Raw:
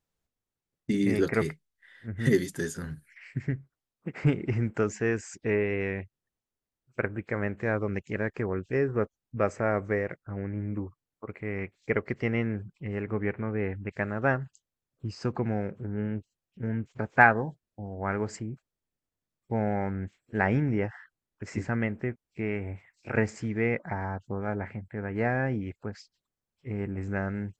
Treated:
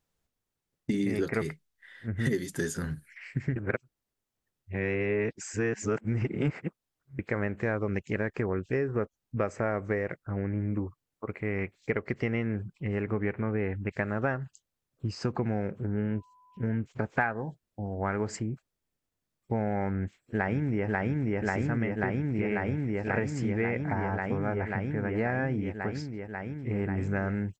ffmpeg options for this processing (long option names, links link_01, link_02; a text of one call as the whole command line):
ffmpeg -i in.wav -filter_complex "[0:a]asettb=1/sr,asplit=3[link_01][link_02][link_03];[link_01]atrim=end=16.104[link_04];[link_02]atrim=start=16.1:end=16.66,asetpts=PTS-STARTPTS,afade=type=in:duration=0.004:curve=qsin,afade=type=out:start_time=0.556:duration=0.004:curve=qsin,aeval=exprs='val(0)+0.000891*sin(2*PI*1000*n/s)':channel_layout=same[link_05];[link_03]atrim=start=16.656[link_06];[link_04][link_05]acrossfade=duration=0.004:curve1=hsin:curve2=qsin[link_07];[link_07][link_06]acrossfade=duration=0.004:curve1=qsin:curve2=hsin,asplit=2[link_08][link_09];[link_09]afade=type=in:start_time=19.94:duration=0.01,afade=type=out:start_time=20.87:duration=0.01,aecho=0:1:540|1080|1620|2160|2700|3240|3780|4320|4860|5400|5940|6480:0.841395|0.715186|0.607908|0.516722|0.439214|0.373331|0.317332|0.269732|0.229272|0.194881|0.165649|0.140802[link_10];[link_08][link_10]amix=inputs=2:normalize=0,asplit=3[link_11][link_12][link_13];[link_11]atrim=end=3.562[link_14];[link_12]atrim=start=3.558:end=7.192,asetpts=PTS-STARTPTS,areverse[link_15];[link_13]atrim=start=7.188[link_16];[link_14][link_15]acrossfade=duration=0.004:curve1=hsin:curve2=hsin[link_17];[link_17][link_16]acrossfade=duration=0.004:curve1=hsin:curve2=hsin,acompressor=threshold=-29dB:ratio=5,volume=3.5dB" out.wav